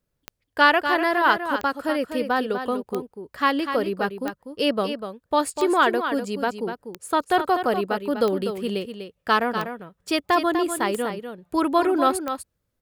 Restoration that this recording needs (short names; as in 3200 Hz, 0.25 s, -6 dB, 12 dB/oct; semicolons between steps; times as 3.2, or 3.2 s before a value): de-click; inverse comb 0.246 s -8.5 dB